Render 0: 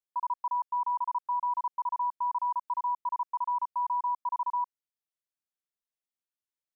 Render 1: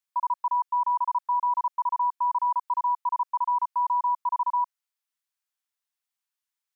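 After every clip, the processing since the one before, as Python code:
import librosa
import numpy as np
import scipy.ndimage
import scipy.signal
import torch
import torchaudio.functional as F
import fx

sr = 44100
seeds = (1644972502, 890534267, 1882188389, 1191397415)

y = scipy.signal.sosfilt(scipy.signal.butter(4, 830.0, 'highpass', fs=sr, output='sos'), x)
y = y * librosa.db_to_amplitude(6.0)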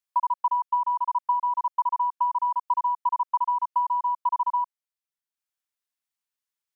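y = fx.transient(x, sr, attack_db=7, sustain_db=-5)
y = y * librosa.db_to_amplitude(-2.0)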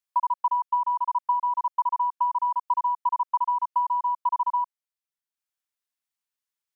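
y = x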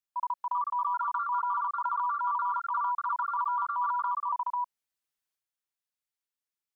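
y = fx.echo_pitch(x, sr, ms=415, semitones=3, count=2, db_per_echo=-6.0)
y = fx.transient(y, sr, attack_db=-7, sustain_db=7)
y = y * librosa.db_to_amplitude(-5.0)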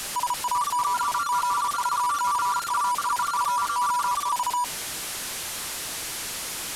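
y = fx.delta_mod(x, sr, bps=64000, step_db=-30.0)
y = y * librosa.db_to_amplitude(5.0)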